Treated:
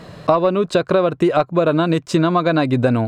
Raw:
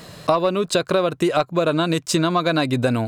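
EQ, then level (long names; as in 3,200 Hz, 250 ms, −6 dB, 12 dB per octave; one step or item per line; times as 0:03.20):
low-pass filter 1,600 Hz 6 dB per octave
+4.0 dB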